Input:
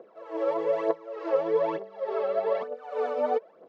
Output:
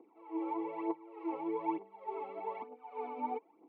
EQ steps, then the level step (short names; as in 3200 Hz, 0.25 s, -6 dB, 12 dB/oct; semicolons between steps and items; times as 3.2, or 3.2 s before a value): vowel filter u; LPF 4000 Hz 12 dB/oct; +5.5 dB